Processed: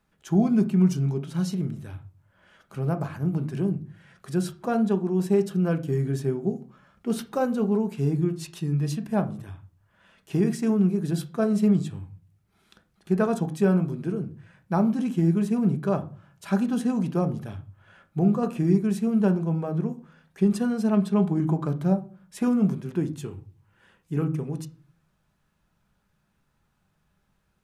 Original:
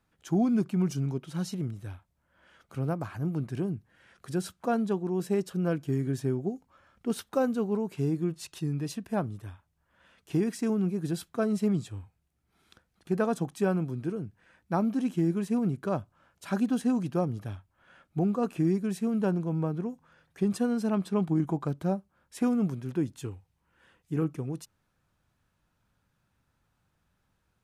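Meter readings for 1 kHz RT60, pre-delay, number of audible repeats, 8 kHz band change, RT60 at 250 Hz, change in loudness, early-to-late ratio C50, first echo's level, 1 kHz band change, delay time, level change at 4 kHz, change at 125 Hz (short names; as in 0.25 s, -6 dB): 0.35 s, 5 ms, none, +2.0 dB, 0.60 s, +5.0 dB, 16.5 dB, none, +3.0 dB, none, +2.5 dB, +6.0 dB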